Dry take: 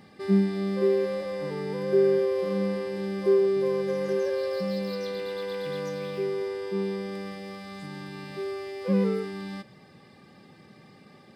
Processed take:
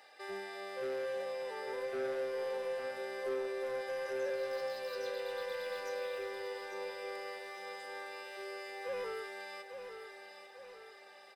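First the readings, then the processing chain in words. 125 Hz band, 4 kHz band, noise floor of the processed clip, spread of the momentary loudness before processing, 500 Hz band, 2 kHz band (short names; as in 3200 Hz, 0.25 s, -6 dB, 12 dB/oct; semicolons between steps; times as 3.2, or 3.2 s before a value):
under -30 dB, -5.5 dB, -56 dBFS, 15 LU, -11.5 dB, -2.0 dB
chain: HPF 590 Hz 24 dB/oct; dynamic EQ 4300 Hz, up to -5 dB, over -58 dBFS, Q 1.1; notch comb 1100 Hz; soft clip -32.5 dBFS, distortion -15 dB; feedback echo 0.849 s, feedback 49%, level -8 dB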